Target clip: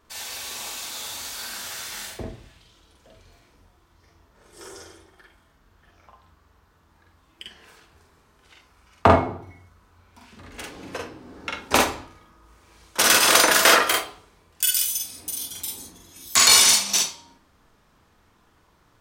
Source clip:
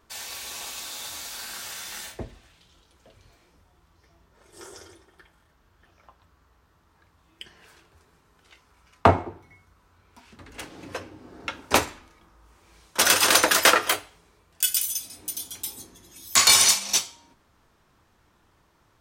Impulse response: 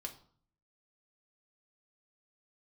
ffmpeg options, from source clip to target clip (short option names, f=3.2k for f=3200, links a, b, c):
-filter_complex "[0:a]asplit=2[a][b];[1:a]atrim=start_sample=2205,adelay=45[c];[b][c]afir=irnorm=-1:irlink=0,volume=2dB[d];[a][d]amix=inputs=2:normalize=0"